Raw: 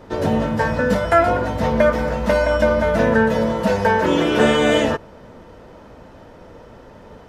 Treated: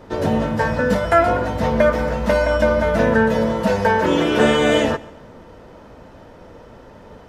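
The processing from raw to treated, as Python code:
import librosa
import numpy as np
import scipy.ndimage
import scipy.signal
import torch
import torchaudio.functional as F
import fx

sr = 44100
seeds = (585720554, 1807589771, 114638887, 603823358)

y = fx.echo_feedback(x, sr, ms=135, feedback_pct=34, wet_db=-21.0)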